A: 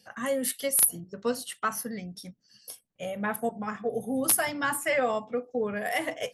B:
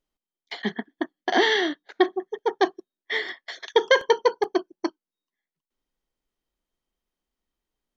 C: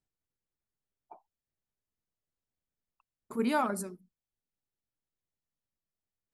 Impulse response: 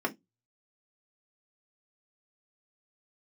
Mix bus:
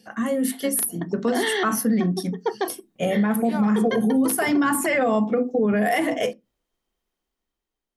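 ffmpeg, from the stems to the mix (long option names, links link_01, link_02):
-filter_complex "[0:a]equalizer=frequency=220:width=1.1:gain=12,alimiter=limit=-20dB:level=0:latency=1:release=335,volume=1.5dB,asplit=3[link_01][link_02][link_03];[link_02]volume=-11.5dB[link_04];[1:a]volume=-3.5dB,asplit=2[link_05][link_06];[link_06]volume=-22.5dB[link_07];[2:a]acontrast=81,volume=-16.5dB[link_08];[link_03]apad=whole_len=351373[link_09];[link_05][link_09]sidechaincompress=threshold=-51dB:ratio=3:attack=16:release=141[link_10];[3:a]atrim=start_sample=2205[link_11];[link_04][link_07]amix=inputs=2:normalize=0[link_12];[link_12][link_11]afir=irnorm=-1:irlink=0[link_13];[link_01][link_10][link_08][link_13]amix=inputs=4:normalize=0,dynaudnorm=framelen=270:gausssize=7:maxgain=8.5dB,alimiter=limit=-13.5dB:level=0:latency=1:release=46"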